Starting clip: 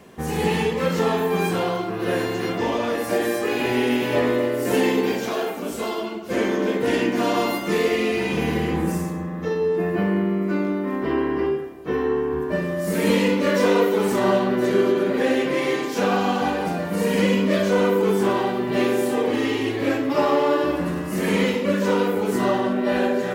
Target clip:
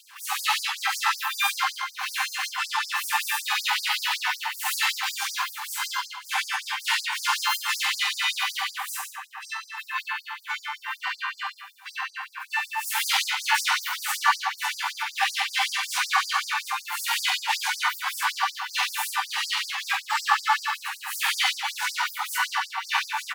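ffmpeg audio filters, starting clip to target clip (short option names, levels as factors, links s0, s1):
-filter_complex "[0:a]asplit=2[s0][s1];[s1]adelay=13,volume=0.211[s2];[s0][s2]amix=inputs=2:normalize=0,asplit=3[s3][s4][s5];[s4]asetrate=52444,aresample=44100,atempo=0.840896,volume=0.178[s6];[s5]asetrate=66075,aresample=44100,atempo=0.66742,volume=0.794[s7];[s3][s6][s7]amix=inputs=3:normalize=0,afftfilt=real='re*gte(b*sr/1024,740*pow(4700/740,0.5+0.5*sin(2*PI*5.3*pts/sr)))':imag='im*gte(b*sr/1024,740*pow(4700/740,0.5+0.5*sin(2*PI*5.3*pts/sr)))':win_size=1024:overlap=0.75,volume=1.5"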